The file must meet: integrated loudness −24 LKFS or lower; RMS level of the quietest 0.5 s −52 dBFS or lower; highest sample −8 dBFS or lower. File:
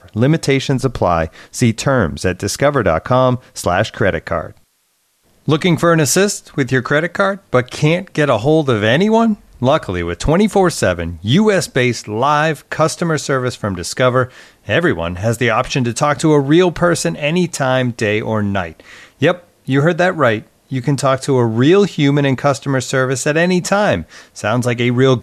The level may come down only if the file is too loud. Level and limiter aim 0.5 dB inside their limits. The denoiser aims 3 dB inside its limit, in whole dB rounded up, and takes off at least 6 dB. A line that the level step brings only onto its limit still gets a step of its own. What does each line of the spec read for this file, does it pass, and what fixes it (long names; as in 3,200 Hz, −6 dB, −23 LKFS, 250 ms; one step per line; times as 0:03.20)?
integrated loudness −15.5 LKFS: out of spec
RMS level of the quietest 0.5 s −62 dBFS: in spec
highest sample −2.5 dBFS: out of spec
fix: level −9 dB